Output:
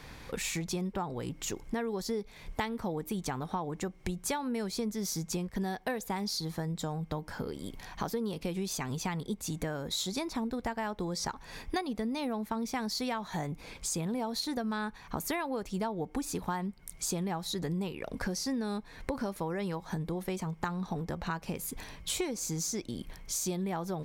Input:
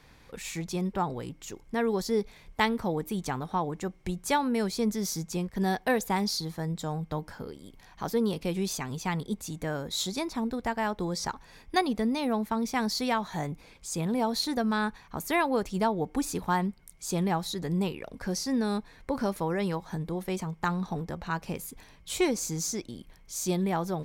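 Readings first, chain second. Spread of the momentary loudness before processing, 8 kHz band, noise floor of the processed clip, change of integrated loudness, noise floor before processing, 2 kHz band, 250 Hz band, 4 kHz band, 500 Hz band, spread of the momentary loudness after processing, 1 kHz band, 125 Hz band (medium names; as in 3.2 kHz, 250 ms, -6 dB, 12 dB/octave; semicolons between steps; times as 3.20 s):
10 LU, -0.5 dB, -52 dBFS, -4.5 dB, -56 dBFS, -5.5 dB, -4.5 dB, -3.0 dB, -5.5 dB, 5 LU, -6.5 dB, -3.5 dB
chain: compression 6:1, threshold -40 dBFS, peak gain reduction 18.5 dB; trim +8 dB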